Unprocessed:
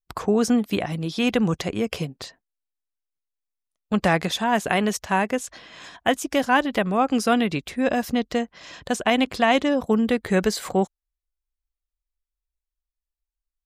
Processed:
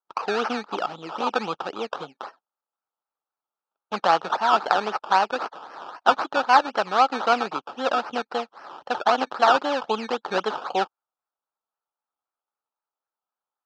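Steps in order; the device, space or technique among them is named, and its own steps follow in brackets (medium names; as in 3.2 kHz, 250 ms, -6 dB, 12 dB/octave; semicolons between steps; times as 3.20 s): 5.37–6.31 s: peaking EQ 5.4 kHz +5.5 dB 2.9 oct; circuit-bent sampling toy (decimation with a swept rate 17×, swing 60% 3.8 Hz; cabinet simulation 470–4800 Hz, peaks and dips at 850 Hz +9 dB, 1.3 kHz +10 dB, 2 kHz -10 dB); trim -1 dB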